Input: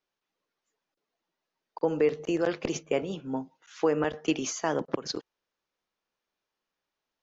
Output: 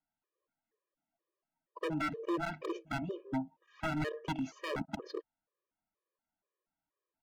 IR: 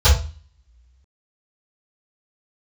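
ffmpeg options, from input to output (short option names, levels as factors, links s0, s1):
-af "adynamicsmooth=sensitivity=0.5:basefreq=1800,aeval=exprs='0.0531*(abs(mod(val(0)/0.0531+3,4)-2)-1)':c=same,afftfilt=real='re*gt(sin(2*PI*2.1*pts/sr)*(1-2*mod(floor(b*sr/1024/320),2)),0)':imag='im*gt(sin(2*PI*2.1*pts/sr)*(1-2*mod(floor(b*sr/1024/320),2)),0)':win_size=1024:overlap=0.75"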